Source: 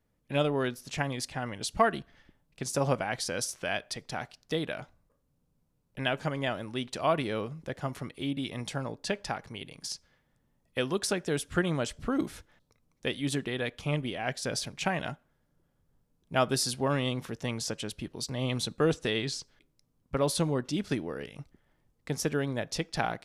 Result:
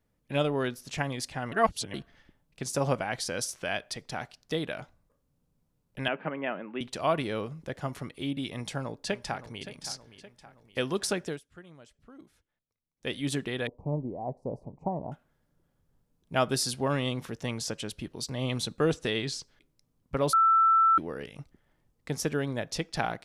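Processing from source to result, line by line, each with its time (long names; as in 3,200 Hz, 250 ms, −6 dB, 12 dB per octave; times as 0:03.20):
0:01.52–0:01.94: reverse
0:06.08–0:06.81: Chebyshev band-pass filter 170–2,700 Hz, order 4
0:08.51–0:09.65: delay throw 570 ms, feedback 50%, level −13.5 dB
0:11.24–0:13.12: duck −22 dB, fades 0.16 s
0:13.67–0:15.12: elliptic low-pass filter 960 Hz
0:20.33–0:20.98: beep over 1,330 Hz −18 dBFS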